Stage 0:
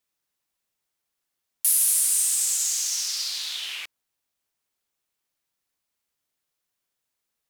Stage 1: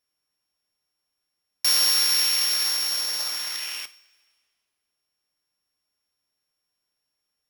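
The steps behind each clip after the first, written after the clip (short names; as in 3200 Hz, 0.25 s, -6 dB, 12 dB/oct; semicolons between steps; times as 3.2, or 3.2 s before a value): sample sorter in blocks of 8 samples; two-slope reverb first 0.35 s, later 1.9 s, from -18 dB, DRR 10 dB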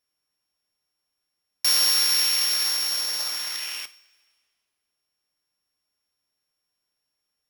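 nothing audible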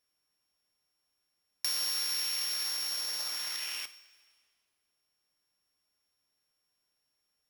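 compressor 2.5:1, threshold -36 dBFS, peak gain reduction 12.5 dB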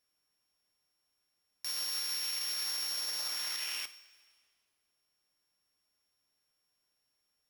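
limiter -26.5 dBFS, peak gain reduction 9.5 dB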